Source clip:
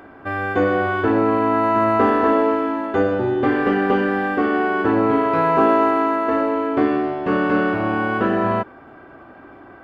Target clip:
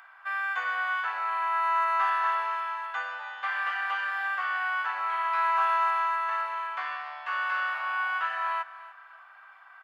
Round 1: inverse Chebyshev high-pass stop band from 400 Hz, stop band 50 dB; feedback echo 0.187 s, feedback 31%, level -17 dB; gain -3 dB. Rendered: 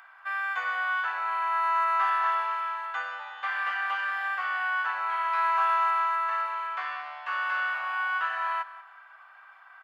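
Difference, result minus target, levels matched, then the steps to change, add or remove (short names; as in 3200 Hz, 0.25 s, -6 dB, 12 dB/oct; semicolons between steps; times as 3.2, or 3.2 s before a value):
echo 0.105 s early
change: feedback echo 0.292 s, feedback 31%, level -17 dB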